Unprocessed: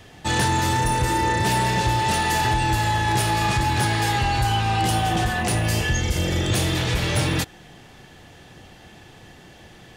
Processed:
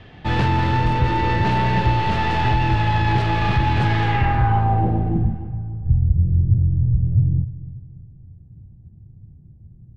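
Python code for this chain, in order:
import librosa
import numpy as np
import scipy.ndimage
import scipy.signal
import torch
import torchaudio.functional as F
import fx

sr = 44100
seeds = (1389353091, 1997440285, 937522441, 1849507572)

p1 = fx.tracing_dist(x, sr, depth_ms=0.39)
p2 = fx.bass_treble(p1, sr, bass_db=5, treble_db=-13)
p3 = fx.overload_stage(p2, sr, gain_db=28.5, at=(5.34, 5.86))
p4 = fx.filter_sweep_lowpass(p3, sr, from_hz=3900.0, to_hz=120.0, start_s=4.0, end_s=5.54, q=1.4)
y = p4 + fx.echo_feedback(p4, sr, ms=291, feedback_pct=44, wet_db=-16, dry=0)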